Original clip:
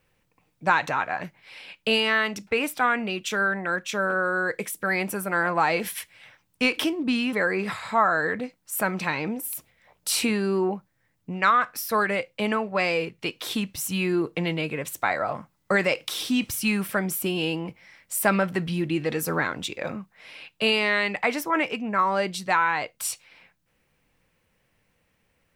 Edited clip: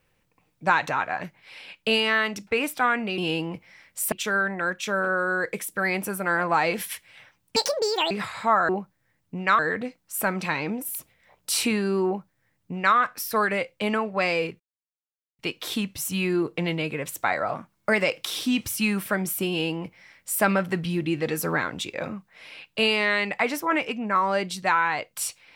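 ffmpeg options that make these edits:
-filter_complex "[0:a]asplit=10[a][b][c][d][e][f][g][h][i][j];[a]atrim=end=3.182[k];[b]atrim=start=17.318:end=18.262[l];[c]atrim=start=3.178:end=6.624[m];[d]atrim=start=6.62:end=7.59,asetpts=PTS-STARTPTS,asetrate=78057,aresample=44100[n];[e]atrim=start=7.586:end=8.172[o];[f]atrim=start=10.638:end=11.542[p];[g]atrim=start=8.168:end=13.18,asetpts=PTS-STARTPTS,afade=t=out:st=5.008:d=0.004:c=hsin,apad=pad_dur=0.79[q];[h]atrim=start=13.18:end=15.334,asetpts=PTS-STARTPTS,afade=t=in:d=0.004:c=hsin[r];[i]atrim=start=15.33:end=15.85,asetpts=PTS-STARTPTS,asetrate=48069,aresample=44100[s];[j]atrim=start=15.846[t];[k][l]acrossfade=d=0.004:c1=hsin:c2=hsin[u];[u][m]acrossfade=d=0.004:c1=hsin:c2=hsin[v];[v][n]acrossfade=d=0.004:c1=hsin:c2=hsin[w];[w][o]acrossfade=d=0.004:c1=hsin:c2=hsin[x];[x][p]acrossfade=d=0.004:c1=hsin:c2=hsin[y];[q][r]concat=n=2:v=0:a=1[z];[y][z]acrossfade=d=0.004:c1=hsin:c2=hsin[aa];[aa][s]acrossfade=d=0.004:c1=hsin:c2=hsin[ab];[ab][t]acrossfade=d=0.004:c1=hsin:c2=hsin"

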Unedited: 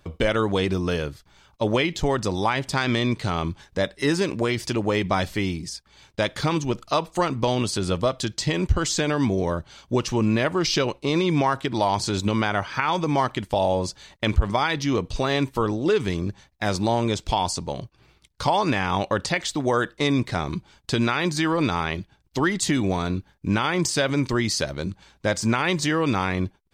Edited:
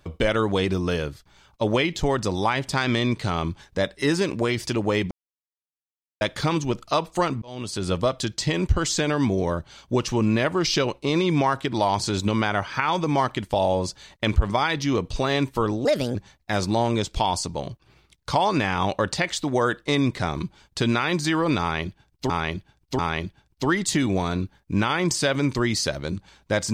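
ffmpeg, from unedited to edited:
-filter_complex "[0:a]asplit=8[a][b][c][d][e][f][g][h];[a]atrim=end=5.11,asetpts=PTS-STARTPTS,afade=t=out:st=5.106:d=0.004:c=hsin[i];[b]atrim=start=5.11:end=6.21,asetpts=PTS-STARTPTS,volume=0[j];[c]atrim=start=6.21:end=7.42,asetpts=PTS-STARTPTS,afade=t=in:d=0.004:c=hsin,afade=t=out:st=1.206:d=0.004:c=hsin[k];[d]atrim=start=7.42:end=15.854,asetpts=PTS-STARTPTS,afade=t=in:d=0.51[l];[e]atrim=start=15.85:end=16.27,asetpts=PTS-STARTPTS,asetrate=62181,aresample=44100,atrim=end_sample=13136,asetpts=PTS-STARTPTS[m];[f]atrim=start=16.266:end=22.422[n];[g]atrim=start=21.728:end=22.422[o];[h]atrim=start=21.728[p];[i][j][k][l]concat=n=4:v=0:a=1[q];[q][m]acrossfade=d=0.004:c1=hsin:c2=hsin[r];[r][n]acrossfade=d=0.004:c1=hsin:c2=hsin[s];[s][o]acrossfade=d=0.004:c1=hsin:c2=hsin[t];[t][p]acrossfade=d=0.004:c1=hsin:c2=hsin"

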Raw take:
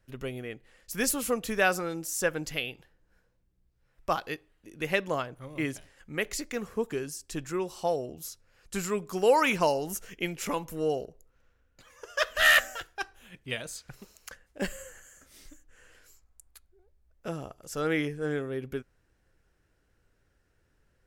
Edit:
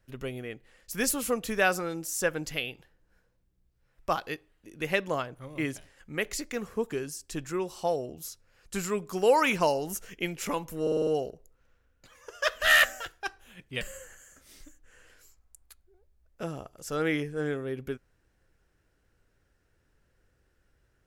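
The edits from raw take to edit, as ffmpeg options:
-filter_complex "[0:a]asplit=7[a][b][c][d][e][f][g];[a]atrim=end=10.872[h];[b]atrim=start=10.818:end=10.872[i];[c]atrim=start=10.818:end=10.872[j];[d]atrim=start=10.818:end=10.872[k];[e]atrim=start=10.818:end=10.872[l];[f]atrim=start=10.818:end=13.562[m];[g]atrim=start=14.658[n];[h][i]acrossfade=d=0.004:c1=hsin:c2=hsin[o];[o][j]acrossfade=d=0.004:c1=hsin:c2=hsin[p];[p][k]acrossfade=d=0.004:c1=hsin:c2=hsin[q];[q][l]acrossfade=d=0.004:c1=hsin:c2=hsin[r];[r][m]acrossfade=d=0.004:c1=hsin:c2=hsin[s];[s][n]acrossfade=d=0.004:c1=hsin:c2=hsin"

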